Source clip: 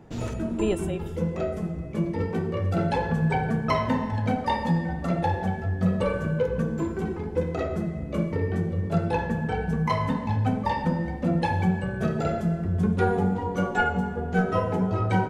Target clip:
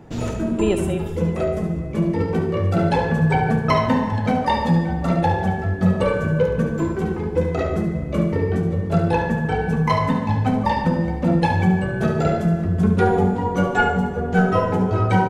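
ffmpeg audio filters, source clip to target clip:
-af "aecho=1:1:71|147|581:0.355|0.133|0.112,volume=5.5dB"

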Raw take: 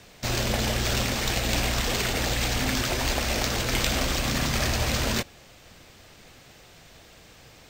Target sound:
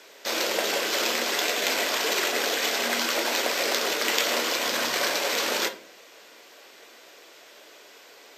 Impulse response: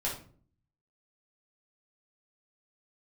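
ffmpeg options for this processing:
-filter_complex "[0:a]highpass=f=350:w=0.5412,highpass=f=350:w=1.3066,asetrate=40517,aresample=44100,asplit=2[a][b];[1:a]atrim=start_sample=2205[c];[b][c]afir=irnorm=-1:irlink=0,volume=-9.5dB[d];[a][d]amix=inputs=2:normalize=0"

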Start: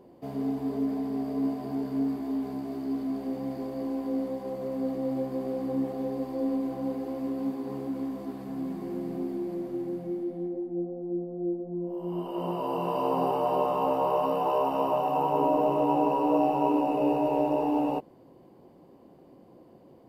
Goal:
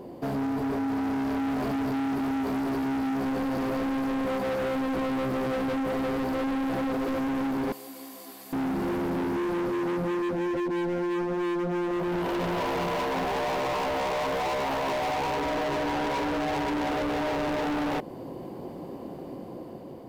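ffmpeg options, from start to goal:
-filter_complex "[0:a]asettb=1/sr,asplit=3[a][b][c];[a]atrim=end=7.724[d];[b]atrim=start=7.72:end=8.53,asetpts=PTS-STARTPTS,afade=t=in:d=0.004:c=qsin,afade=t=out:st=0.806:d=0.004:c=qsin,aderivative[e];[c]atrim=start=8.526[f];[d][e]acrossfade=d=0.004:c1=hsin:c2=qsin[g];[g][f]acrossfade=d=0.004:c1=qsin:c2=hsin,asplit=2[h][i];[i]acompressor=threshold=-35dB:ratio=6,volume=-2dB[j];[h][j]amix=inputs=2:normalize=0,alimiter=limit=-22dB:level=0:latency=1:release=33,dynaudnorm=f=450:g=5:m=4dB,volume=33.5dB,asoftclip=hard,volume=-33.5dB,asettb=1/sr,asplit=3[k][l][m];[k]atrim=end=10.324[n];[l]atrim=start=10.32:end=11.15,asetpts=PTS-STARTPTS,afade=t=in:d=0.004:c=qsin,afade=t=out:st=0.826:d=0.004:c=qsin,asuperstop=centerf=1200:order=4:qfactor=6.5[o];[m]atrim=start=11.146[p];[n][o]acrossfade=d=0.004:c1=hsin:c2=qsin[q];[q][p]acrossfade=d=0.004:c1=qsin:c2=hsin,volume=6.5dB"

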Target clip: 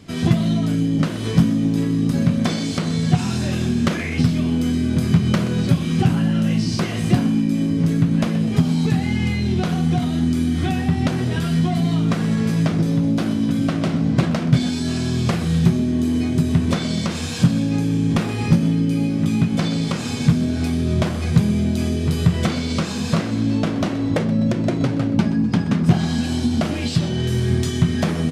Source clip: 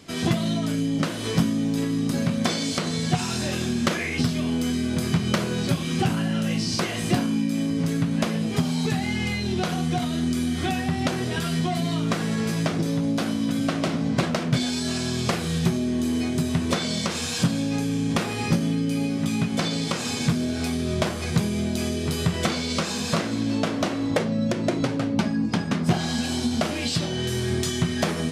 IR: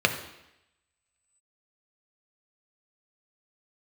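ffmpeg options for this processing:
-filter_complex "[0:a]bass=f=250:g=9,treble=f=4k:g=-3,asplit=2[a][b];[b]asplit=4[c][d][e][f];[c]adelay=126,afreqshift=48,volume=-15.5dB[g];[d]adelay=252,afreqshift=96,volume=-22.2dB[h];[e]adelay=378,afreqshift=144,volume=-29dB[i];[f]adelay=504,afreqshift=192,volume=-35.7dB[j];[g][h][i][j]amix=inputs=4:normalize=0[k];[a][k]amix=inputs=2:normalize=0"

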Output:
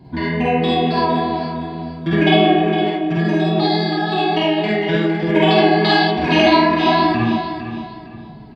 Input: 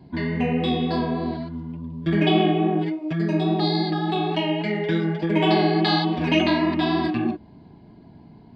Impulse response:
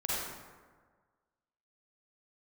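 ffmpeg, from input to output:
-filter_complex "[0:a]aecho=1:1:458|916|1374:0.316|0.0949|0.0285[a];[1:a]atrim=start_sample=2205,atrim=end_sample=3528[b];[a][b]afir=irnorm=-1:irlink=0,volume=5dB"

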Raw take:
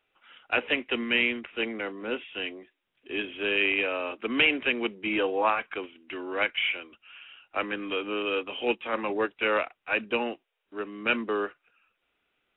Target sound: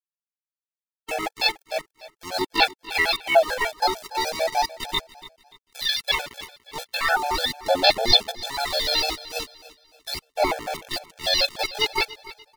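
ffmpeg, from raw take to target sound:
-filter_complex "[0:a]areverse,aecho=1:1:2.2:0.72,asubboost=boost=5:cutoff=67,asplit=3[a][b][c];[b]asetrate=22050,aresample=44100,atempo=2,volume=-9dB[d];[c]asetrate=52444,aresample=44100,atempo=0.840896,volume=-4dB[e];[a][d][e]amix=inputs=3:normalize=0,aphaser=in_gain=1:out_gain=1:delay=3.7:decay=0.69:speed=0.38:type=sinusoidal,aeval=exprs='val(0)*gte(abs(val(0)),0.0501)':c=same,asetrate=68011,aresample=44100,atempo=0.64842,aecho=1:1:289|578|867:0.133|0.0467|0.0163,afftfilt=real='re*gt(sin(2*PI*6.7*pts/sr)*(1-2*mod(floor(b*sr/1024/450),2)),0)':imag='im*gt(sin(2*PI*6.7*pts/sr)*(1-2*mod(floor(b*sr/1024/450),2)),0)':win_size=1024:overlap=0.75,volume=1.5dB"

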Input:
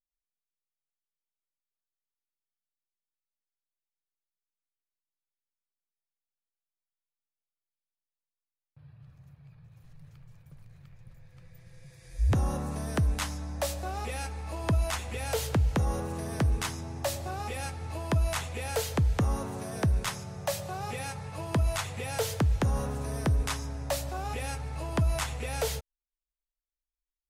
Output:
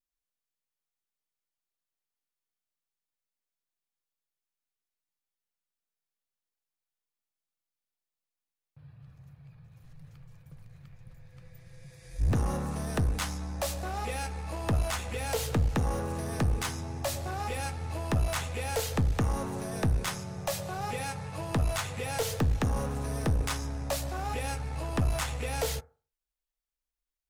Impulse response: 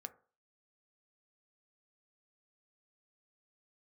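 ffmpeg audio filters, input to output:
-filter_complex "[0:a]aeval=exprs='0.133*(cos(1*acos(clip(val(0)/0.133,-1,1)))-cos(1*PI/2))+0.00531*(cos(4*acos(clip(val(0)/0.133,-1,1)))-cos(4*PI/2))+0.00944*(cos(6*acos(clip(val(0)/0.133,-1,1)))-cos(6*PI/2))':c=same,aeval=exprs='clip(val(0),-1,0.0355)':c=same,asplit=2[a][b];[1:a]atrim=start_sample=2205[c];[b][c]afir=irnorm=-1:irlink=0,volume=7.5dB[d];[a][d]amix=inputs=2:normalize=0,volume=-6dB"

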